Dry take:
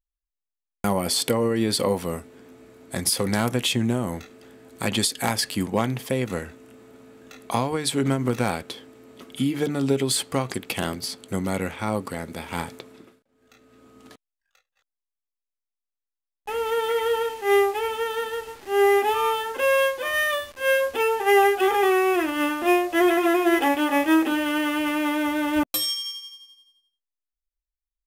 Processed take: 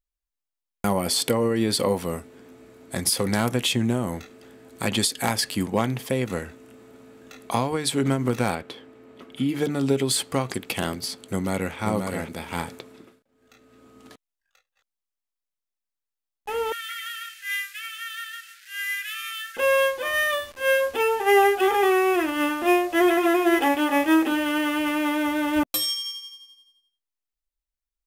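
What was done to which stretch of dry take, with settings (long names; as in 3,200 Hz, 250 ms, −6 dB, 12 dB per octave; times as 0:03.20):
0:08.55–0:09.49: bass and treble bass −2 dB, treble −11 dB
0:11.25–0:11.75: delay throw 530 ms, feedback 10%, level −4.5 dB
0:16.72–0:19.57: Butterworth high-pass 1,400 Hz 96 dB per octave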